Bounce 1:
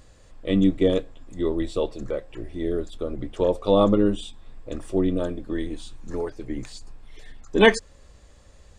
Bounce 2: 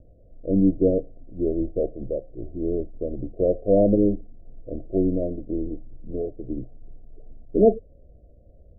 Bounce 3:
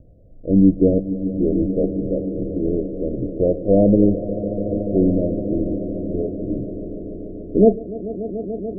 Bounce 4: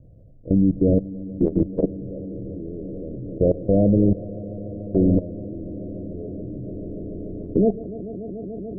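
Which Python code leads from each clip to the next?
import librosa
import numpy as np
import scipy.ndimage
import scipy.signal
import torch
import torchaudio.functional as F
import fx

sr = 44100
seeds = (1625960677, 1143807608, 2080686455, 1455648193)

y1 = scipy.signal.sosfilt(scipy.signal.cheby1(10, 1.0, 720.0, 'lowpass', fs=sr, output='sos'), x)
y1 = y1 * librosa.db_to_amplitude(1.0)
y2 = fx.peak_eq(y1, sr, hz=150.0, db=7.5, octaves=2.4)
y2 = fx.echo_swell(y2, sr, ms=145, loudest=5, wet_db=-15.5)
y3 = fx.peak_eq(y2, sr, hz=120.0, db=9.0, octaves=1.1)
y3 = fx.level_steps(y3, sr, step_db=16)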